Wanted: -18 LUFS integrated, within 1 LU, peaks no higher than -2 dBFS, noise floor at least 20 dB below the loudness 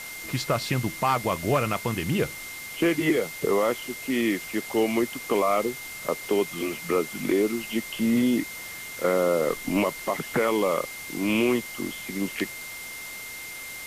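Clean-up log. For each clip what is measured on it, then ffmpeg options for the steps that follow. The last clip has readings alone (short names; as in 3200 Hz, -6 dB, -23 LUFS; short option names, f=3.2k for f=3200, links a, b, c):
steady tone 2100 Hz; tone level -38 dBFS; noise floor -38 dBFS; noise floor target -47 dBFS; loudness -26.5 LUFS; peak -12.5 dBFS; loudness target -18.0 LUFS
-> -af "bandreject=f=2.1k:w=30"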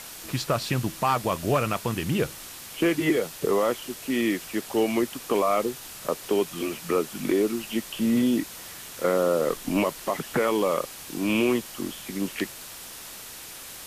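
steady tone none; noise floor -42 dBFS; noise floor target -47 dBFS
-> -af "afftdn=nr=6:nf=-42"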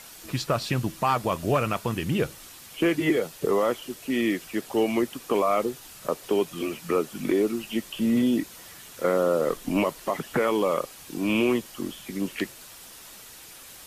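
noise floor -46 dBFS; noise floor target -47 dBFS
-> -af "afftdn=nr=6:nf=-46"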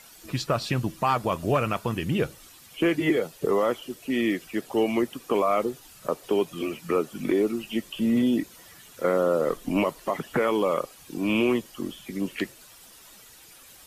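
noise floor -51 dBFS; loudness -26.5 LUFS; peak -13.5 dBFS; loudness target -18.0 LUFS
-> -af "volume=8.5dB"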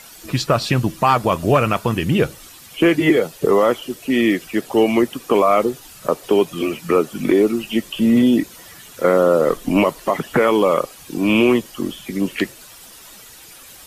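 loudness -18.0 LUFS; peak -5.0 dBFS; noise floor -42 dBFS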